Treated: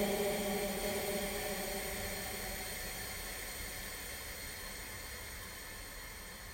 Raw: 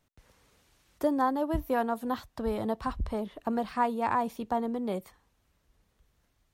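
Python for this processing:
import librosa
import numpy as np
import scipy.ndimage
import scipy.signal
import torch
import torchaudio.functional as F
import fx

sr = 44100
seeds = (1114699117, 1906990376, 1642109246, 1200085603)

y = fx.spec_dropout(x, sr, seeds[0], share_pct=25)
y = fx.paulstretch(y, sr, seeds[1], factor=43.0, window_s=0.5, from_s=5.08)
y = y + 10.0 ** (-6.0 / 20.0) * np.pad(y, (int(831 * sr / 1000.0), 0))[:len(y)]
y = F.gain(torch.from_numpy(y), 16.5).numpy()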